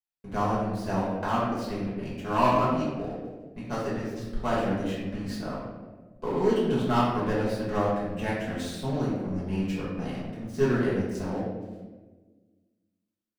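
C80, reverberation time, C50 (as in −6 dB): 2.5 dB, 1.4 s, 0.5 dB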